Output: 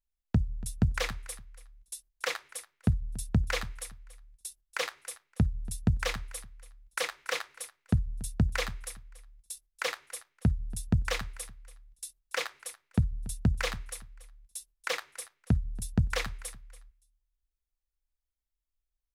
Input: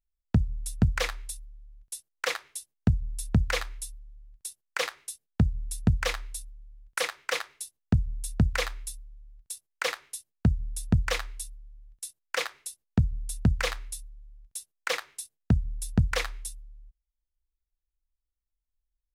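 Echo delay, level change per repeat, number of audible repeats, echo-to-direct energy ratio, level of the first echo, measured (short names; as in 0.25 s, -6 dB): 0.284 s, -13.5 dB, 2, -18.0 dB, -18.0 dB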